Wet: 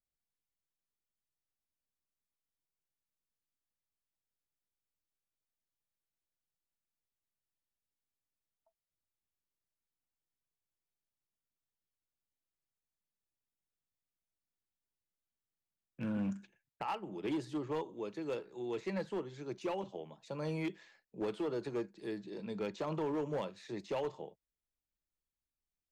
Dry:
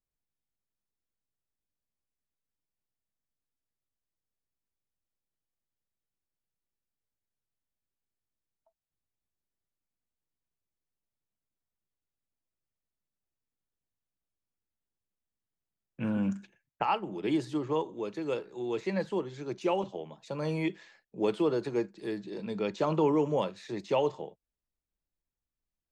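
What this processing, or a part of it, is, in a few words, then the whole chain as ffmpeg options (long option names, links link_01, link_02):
limiter into clipper: -af "alimiter=limit=-20.5dB:level=0:latency=1:release=208,asoftclip=type=hard:threshold=-25.5dB,volume=-5.5dB"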